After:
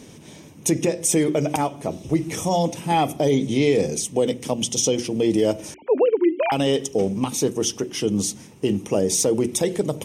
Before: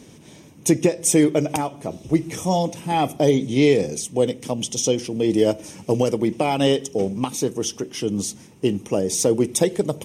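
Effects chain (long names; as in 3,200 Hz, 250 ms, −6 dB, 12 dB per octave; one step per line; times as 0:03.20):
0:05.74–0:06.52: three sine waves on the formant tracks
brickwall limiter −12.5 dBFS, peak gain reduction 8 dB
mains-hum notches 60/120/180/240/300/360 Hz
level +2.5 dB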